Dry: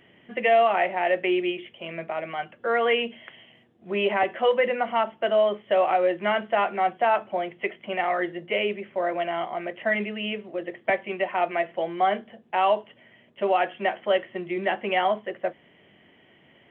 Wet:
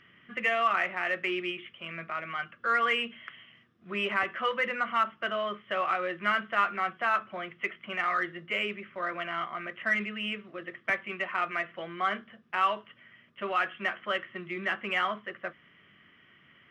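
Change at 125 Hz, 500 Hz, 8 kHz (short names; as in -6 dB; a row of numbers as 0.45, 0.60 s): -4.5 dB, -12.5 dB, n/a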